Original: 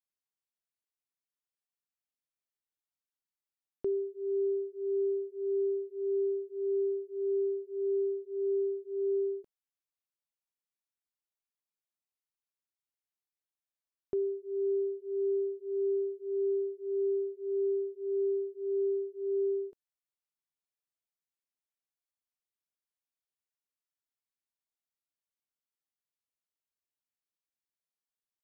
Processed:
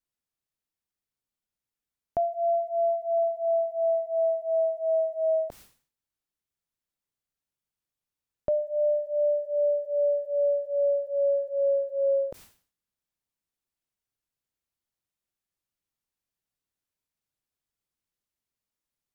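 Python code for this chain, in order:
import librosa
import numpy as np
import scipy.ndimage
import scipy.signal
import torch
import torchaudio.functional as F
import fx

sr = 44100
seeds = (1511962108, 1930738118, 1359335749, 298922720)

y = fx.speed_glide(x, sr, from_pct=181, to_pct=116)
y = fx.low_shelf(y, sr, hz=260.0, db=11.0)
y = fx.sustainer(y, sr, db_per_s=130.0)
y = y * 10.0 ** (4.5 / 20.0)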